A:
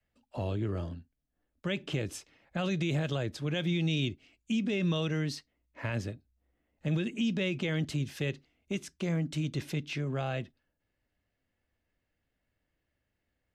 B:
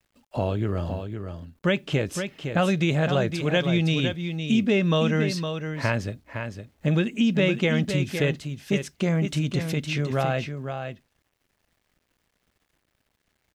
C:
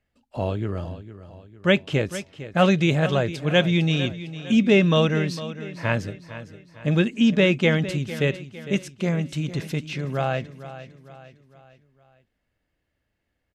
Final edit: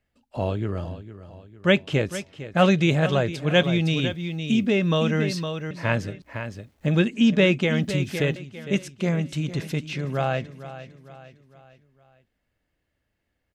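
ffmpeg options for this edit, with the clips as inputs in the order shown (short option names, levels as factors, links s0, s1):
-filter_complex "[1:a]asplit=3[s0][s1][s2];[2:a]asplit=4[s3][s4][s5][s6];[s3]atrim=end=3.632[s7];[s0]atrim=start=3.628:end=5.712[s8];[s4]atrim=start=5.708:end=6.222[s9];[s1]atrim=start=6.218:end=6.942[s10];[s5]atrim=start=6.938:end=7.622[s11];[s2]atrim=start=7.618:end=8.362[s12];[s6]atrim=start=8.358[s13];[s7][s8]acrossfade=d=0.004:c1=hsin:c2=hsin[s14];[s14][s9]acrossfade=d=0.004:c1=hsin:c2=hsin[s15];[s15][s10]acrossfade=d=0.004:c1=hsin:c2=hsin[s16];[s16][s11]acrossfade=d=0.004:c1=hsin:c2=hsin[s17];[s17][s12]acrossfade=d=0.004:c1=hsin:c2=hsin[s18];[s18][s13]acrossfade=d=0.004:c1=hsin:c2=hsin"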